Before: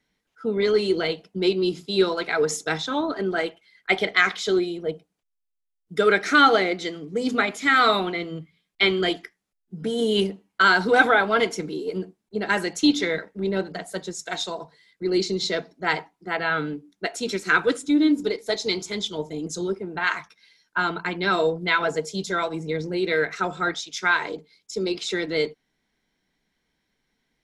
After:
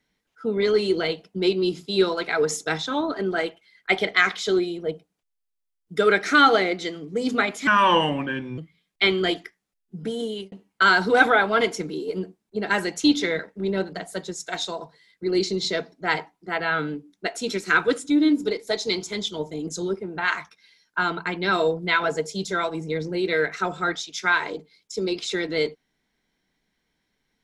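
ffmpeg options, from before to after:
-filter_complex "[0:a]asplit=4[a][b][c][d];[a]atrim=end=7.674[e];[b]atrim=start=7.67:end=8.37,asetpts=PTS-STARTPTS,asetrate=33957,aresample=44100[f];[c]atrim=start=8.366:end=10.31,asetpts=PTS-STARTPTS,afade=t=out:st=1.404:d=0.54[g];[d]atrim=start=10.31,asetpts=PTS-STARTPTS,afade=t=in:d=0.004:c=hsin[h];[e][f]acrossfade=d=0.004:c1=hsin:c2=hsin[i];[g][h]concat=n=2:v=0:a=1[j];[i][j]acrossfade=d=0.004:c1=hsin:c2=hsin"

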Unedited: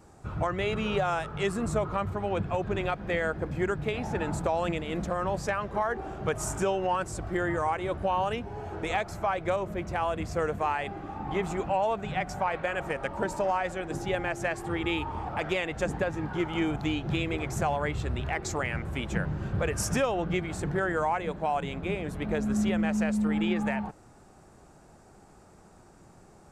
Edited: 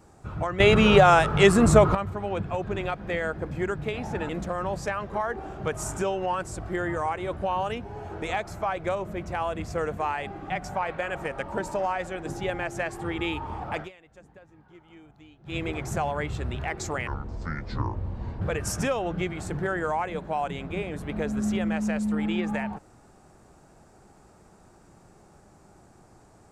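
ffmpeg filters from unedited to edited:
-filter_complex "[0:a]asplit=9[a][b][c][d][e][f][g][h][i];[a]atrim=end=0.602[j];[b]atrim=start=0.598:end=1.952,asetpts=PTS-STARTPTS,volume=12dB[k];[c]atrim=start=1.948:end=4.292[l];[d]atrim=start=4.898:end=11.112[m];[e]atrim=start=12.148:end=15.58,asetpts=PTS-STARTPTS,afade=t=out:st=3.302:d=0.13:c=qua:silence=0.0749894[n];[f]atrim=start=15.58:end=17.08,asetpts=PTS-STARTPTS,volume=-22.5dB[o];[g]atrim=start=17.08:end=18.724,asetpts=PTS-STARTPTS,afade=t=in:d=0.13:c=qua:silence=0.0749894[p];[h]atrim=start=18.72:end=19.54,asetpts=PTS-STARTPTS,asetrate=26901,aresample=44100[q];[i]atrim=start=19.536[r];[j][k]acrossfade=d=0.004:c1=hsin:c2=hsin[s];[s][l]acrossfade=d=0.004:c1=hsin:c2=hsin[t];[t][m]acrossfade=d=0.004:c1=hsin:c2=hsin[u];[n][o][p]concat=n=3:v=0:a=1[v];[u][v]acrossfade=d=0.004:c1=hsin:c2=hsin[w];[w][q]acrossfade=d=0.004:c1=hsin:c2=hsin[x];[x][r]acrossfade=d=0.004:c1=hsin:c2=hsin"

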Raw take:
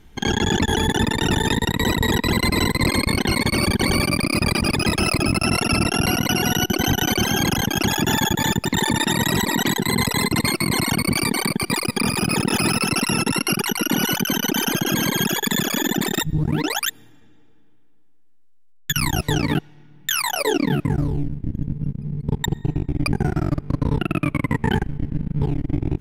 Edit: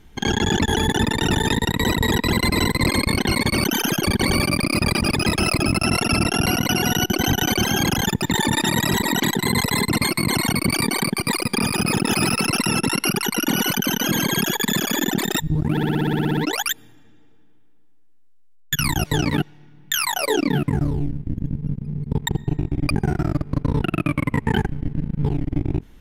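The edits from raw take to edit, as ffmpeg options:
-filter_complex "[0:a]asplit=16[a][b][c][d][e][f][g][h][i][j][k][l][m][n][o][p];[a]atrim=end=3.642[q];[b]atrim=start=14.468:end=14.872[r];[c]atrim=start=3.638:end=7.672[s];[d]atrim=start=8.498:end=14.472[t];[e]atrim=start=14.868:end=16.602[u];[f]atrim=start=16.538:end=16.602[v];[g]atrim=start=16.538:end=16.602[w];[h]atrim=start=16.538:end=16.602[x];[i]atrim=start=16.538:end=16.602[y];[j]atrim=start=16.538:end=16.602[z];[k]atrim=start=16.538:end=16.602[aa];[l]atrim=start=16.538:end=16.602[ab];[m]atrim=start=16.538:end=16.602[ac];[n]atrim=start=16.538:end=16.602[ad];[o]atrim=start=16.538:end=16.602[ae];[p]atrim=start=16.538[af];[q][r]acrossfade=d=0.004:c1=hsin:c2=hsin[ag];[ag][s]acrossfade=d=0.004:c1=hsin:c2=hsin[ah];[ah][t]acrossfade=d=0.004:c1=hsin:c2=hsin[ai];[ai][u]acrossfade=d=0.004:c1=hsin:c2=hsin[aj];[aj][v]acrossfade=d=0.004:c1=hsin:c2=hsin[ak];[ak][w]acrossfade=d=0.004:c1=hsin:c2=hsin[al];[al][x]acrossfade=d=0.004:c1=hsin:c2=hsin[am];[am][y]acrossfade=d=0.004:c1=hsin:c2=hsin[an];[an][z]acrossfade=d=0.004:c1=hsin:c2=hsin[ao];[ao][aa]acrossfade=d=0.004:c1=hsin:c2=hsin[ap];[ap][ab]acrossfade=d=0.004:c1=hsin:c2=hsin[aq];[aq][ac]acrossfade=d=0.004:c1=hsin:c2=hsin[ar];[ar][ad]acrossfade=d=0.004:c1=hsin:c2=hsin[as];[as][ae]acrossfade=d=0.004:c1=hsin:c2=hsin[at];[at][af]acrossfade=d=0.004:c1=hsin:c2=hsin"

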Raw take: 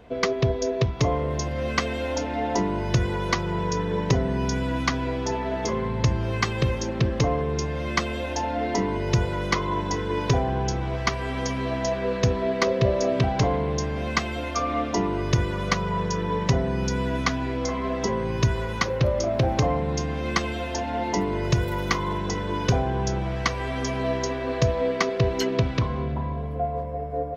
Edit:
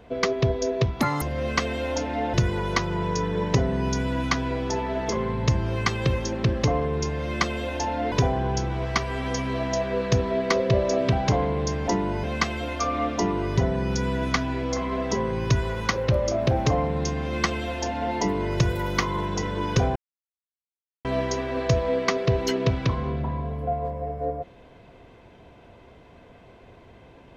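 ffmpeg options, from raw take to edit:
-filter_complex "[0:a]asplit=10[a][b][c][d][e][f][g][h][i][j];[a]atrim=end=1.014[k];[b]atrim=start=1.01:end=1.42,asetpts=PTS-STARTPTS,asetrate=87318,aresample=44100[l];[c]atrim=start=1.416:end=2.542[m];[d]atrim=start=2.898:end=8.682[n];[e]atrim=start=10.228:end=13.992[o];[f]atrim=start=2.538:end=2.902[p];[g]atrim=start=13.988:end=15.332[q];[h]atrim=start=16.498:end=22.88,asetpts=PTS-STARTPTS,afade=t=out:st=6.378:d=0.004:c=hsin[r];[i]atrim=start=22.88:end=23.97,asetpts=PTS-STARTPTS,volume=0[s];[j]atrim=start=23.97,asetpts=PTS-STARTPTS,afade=t=in:d=0.004:c=hsin[t];[k][l]acrossfade=d=0.004:c1=hsin:c2=hsin[u];[u][m]acrossfade=d=0.004:c1=hsin:c2=hsin[v];[v][n]acrossfade=d=0.004:c1=hsin:c2=hsin[w];[w][o]acrossfade=d=0.004:c1=hsin:c2=hsin[x];[x][p]acrossfade=d=0.004:c1=hsin:c2=hsin[y];[y][q]acrossfade=d=0.004:c1=hsin:c2=hsin[z];[r][s][t]concat=n=3:v=0:a=1[aa];[z][aa]acrossfade=d=0.004:c1=hsin:c2=hsin"

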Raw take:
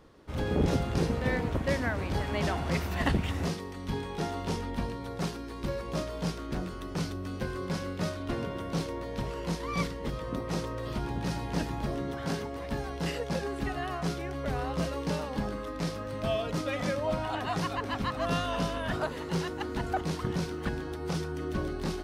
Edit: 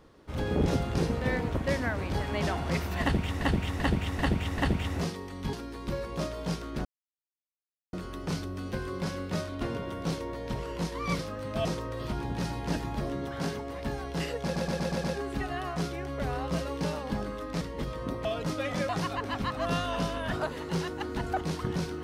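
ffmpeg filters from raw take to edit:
-filter_complex "[0:a]asplit=17[a][b][c][d][e][f][g][h][i][j][k][l][m][n][o][p][q];[a]atrim=end=3.412[r];[b]atrim=start=3.018:end=3.412[s];[c]atrim=start=3.018:end=3.412[t];[d]atrim=start=3.018:end=3.412[u];[e]atrim=start=3.018:end=3.972[v];[f]atrim=start=5.288:end=6.61,asetpts=PTS-STARTPTS,afade=t=out:st=1.318:d=0.004:c=hsin,apad=pad_dur=1.08[w];[g]atrim=start=6.61:end=9.872,asetpts=PTS-STARTPTS,afade=t=in:d=0.004:c=hsin[x];[h]atrim=start=15.868:end=16.332[y];[i]atrim=start=10.508:end=13.422[z];[j]atrim=start=13.298:end=13.422[aa];[k]atrim=start=13.298:end=13.422[ab];[l]atrim=start=13.298:end=13.422[ac];[m]atrim=start=13.298:end=13.422[ad];[n]atrim=start=13.298:end=15.872[ae];[o]atrim=start=9.868:end=10.512[af];[p]atrim=start=16.328:end=16.972[ag];[q]atrim=start=17.488[ah];[r][s]acrossfade=d=0.004:c1=hsin:c2=hsin[ai];[ai][t]acrossfade=d=0.004:c1=hsin:c2=hsin[aj];[aj][u]acrossfade=d=0.004:c1=hsin:c2=hsin[ak];[ak][v]acrossfade=d=0.004:c1=hsin:c2=hsin[al];[w][x]concat=n=2:v=0:a=1[am];[al][am]acrossfade=d=0.004:c1=hsin:c2=hsin[an];[an][y]acrossfade=d=0.004:c1=hsin:c2=hsin[ao];[ao][z]acrossfade=d=0.004:c1=hsin:c2=hsin[ap];[ap][aa]acrossfade=d=0.004:c1=hsin:c2=hsin[aq];[aq][ab]acrossfade=d=0.004:c1=hsin:c2=hsin[ar];[ar][ac]acrossfade=d=0.004:c1=hsin:c2=hsin[as];[as][ad]acrossfade=d=0.004:c1=hsin:c2=hsin[at];[at][ae]acrossfade=d=0.004:c1=hsin:c2=hsin[au];[au][af]acrossfade=d=0.004:c1=hsin:c2=hsin[av];[av][ag]acrossfade=d=0.004:c1=hsin:c2=hsin[aw];[aw][ah]acrossfade=d=0.004:c1=hsin:c2=hsin"

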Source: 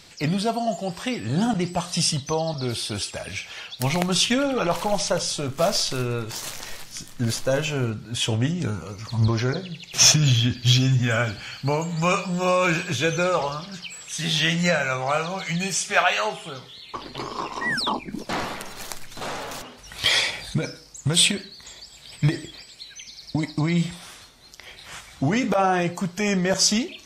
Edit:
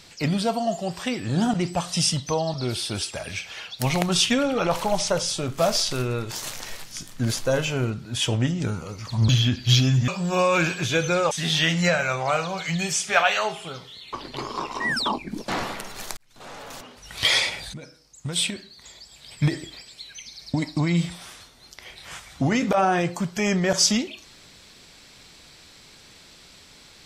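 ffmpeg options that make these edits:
-filter_complex "[0:a]asplit=6[a][b][c][d][e][f];[a]atrim=end=9.292[g];[b]atrim=start=10.268:end=11.062[h];[c]atrim=start=12.168:end=13.402[i];[d]atrim=start=14.118:end=18.98,asetpts=PTS-STARTPTS,afade=t=out:st=4.858:d=0.004:c=hsin[j];[e]atrim=start=18.98:end=20.55,asetpts=PTS-STARTPTS,afade=t=in:d=0.97,afade=t=out:st=1.566:d=0.004:c=hsin:silence=0.177828[k];[f]atrim=start=20.55,asetpts=PTS-STARTPTS,afade=t=in:d=1.94:silence=0.177828[l];[g][h]acrossfade=d=0.004:c1=hsin:c2=hsin[m];[m][i]acrossfade=d=0.004:c1=hsin:c2=hsin[n];[j][k][l]concat=n=3:v=0:a=1[o];[n][o]acrossfade=d=0.004:c1=hsin:c2=hsin"

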